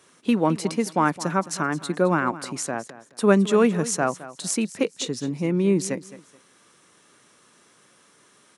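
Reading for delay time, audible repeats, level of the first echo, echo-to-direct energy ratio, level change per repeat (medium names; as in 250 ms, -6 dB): 214 ms, 2, -16.0 dB, -16.0 dB, -12.0 dB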